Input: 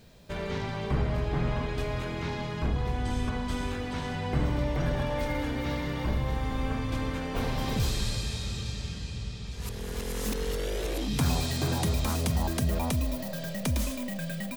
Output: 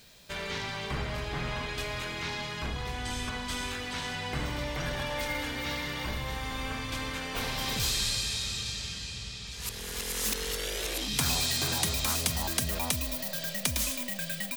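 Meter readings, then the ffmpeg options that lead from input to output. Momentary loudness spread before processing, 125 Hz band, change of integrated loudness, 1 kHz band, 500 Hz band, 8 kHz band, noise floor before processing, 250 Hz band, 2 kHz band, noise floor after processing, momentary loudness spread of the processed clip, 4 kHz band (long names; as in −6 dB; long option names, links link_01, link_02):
7 LU, −8.0 dB, −0.5 dB, −1.5 dB, −5.0 dB, +7.5 dB, −37 dBFS, −7.0 dB, +4.0 dB, −40 dBFS, 8 LU, +6.5 dB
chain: -af "tiltshelf=frequency=1100:gain=-8"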